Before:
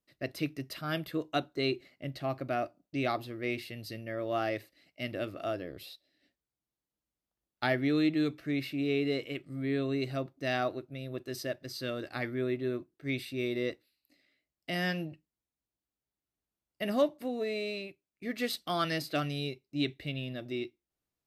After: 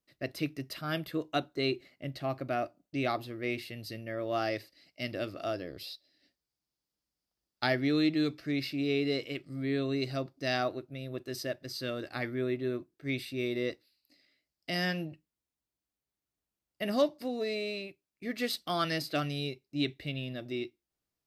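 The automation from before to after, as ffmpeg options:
ffmpeg -i in.wav -af "asetnsamples=nb_out_samples=441:pad=0,asendcmd='4.33 equalizer g 11;10.62 equalizer g 2.5;13.7 equalizer g 9.5;14.85 equalizer g 1.5;16.93 equalizer g 13;17.55 equalizer g 3',equalizer=frequency=4900:width_type=o:width=0.46:gain=1.5" out.wav

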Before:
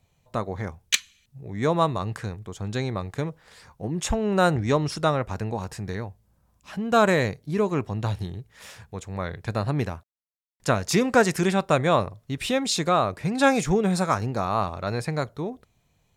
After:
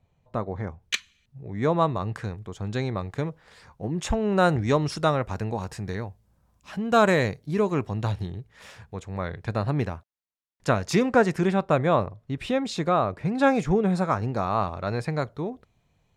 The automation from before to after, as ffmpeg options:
ffmpeg -i in.wav -af "asetnsamples=nb_out_samples=441:pad=0,asendcmd='0.82 lowpass f 2300;2.15 lowpass f 4100;4.49 lowpass f 8500;8.12 lowpass f 3500;11.09 lowpass f 1600;14.23 lowpass f 3400',lowpass=frequency=1300:poles=1" out.wav

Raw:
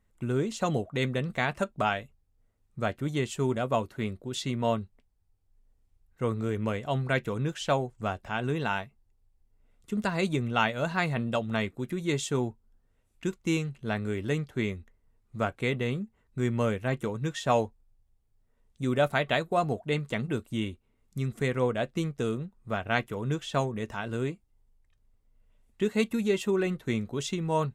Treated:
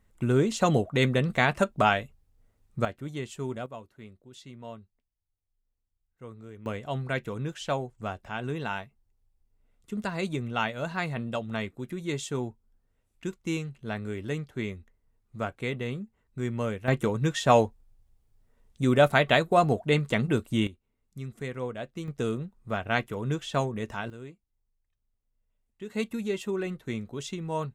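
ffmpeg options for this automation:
ffmpeg -i in.wav -af "asetnsamples=nb_out_samples=441:pad=0,asendcmd='2.85 volume volume -6dB;3.66 volume volume -15dB;6.66 volume volume -3dB;16.88 volume volume 5dB;20.67 volume volume -7dB;22.08 volume volume 0.5dB;24.1 volume volume -12.5dB;25.9 volume volume -4dB',volume=5dB" out.wav

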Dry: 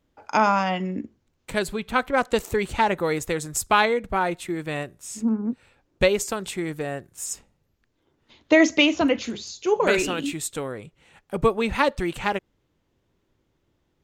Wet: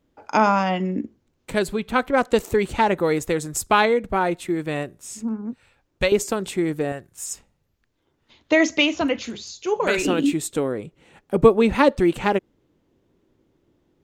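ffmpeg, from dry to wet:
ffmpeg -i in.wav -af "asetnsamples=nb_out_samples=441:pad=0,asendcmd='5.13 equalizer g -4.5;6.12 equalizer g 7;6.92 equalizer g -2;10.05 equalizer g 9.5',equalizer=frequency=310:width_type=o:width=2.1:gain=5" out.wav

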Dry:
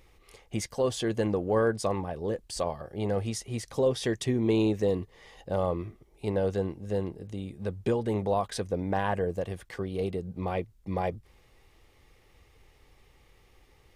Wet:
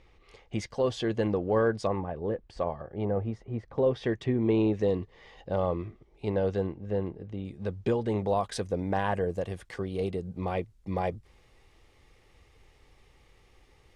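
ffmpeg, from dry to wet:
ffmpeg -i in.wav -af "asetnsamples=nb_out_samples=441:pad=0,asendcmd='1.87 lowpass f 2000;3.05 lowpass f 1200;3.78 lowpass f 2400;4.73 lowpass f 4400;6.67 lowpass f 2600;7.45 lowpass f 5900;8.28 lowpass f 10000',lowpass=4500" out.wav

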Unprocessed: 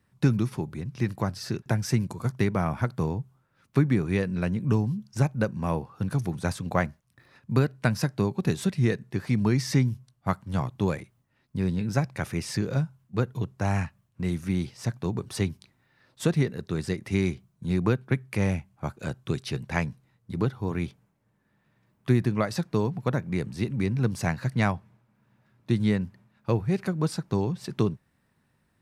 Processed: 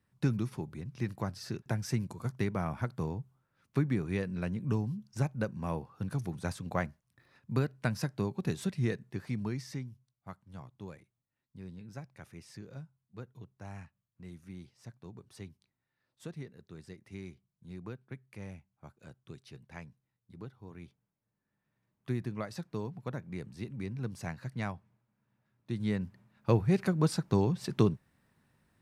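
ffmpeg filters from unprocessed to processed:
ffmpeg -i in.wav -af "volume=11dB,afade=type=out:start_time=8.98:duration=0.9:silence=0.251189,afade=type=in:start_time=20.76:duration=1.38:silence=0.421697,afade=type=in:start_time=25.71:duration=0.79:silence=0.281838" out.wav

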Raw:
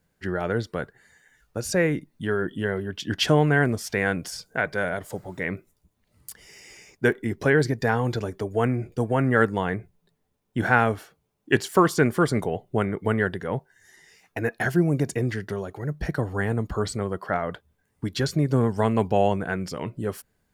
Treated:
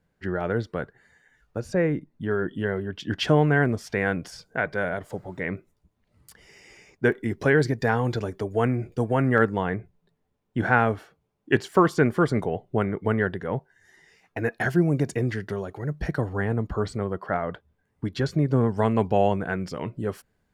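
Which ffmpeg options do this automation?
ffmpeg -i in.wav -af "asetnsamples=nb_out_samples=441:pad=0,asendcmd='1.6 lowpass f 1100;2.31 lowpass f 2600;7.12 lowpass f 6500;9.38 lowpass f 2600;14.39 lowpass f 5500;16.29 lowpass f 2200;18.77 lowpass f 3800',lowpass=frequency=2500:poles=1" out.wav

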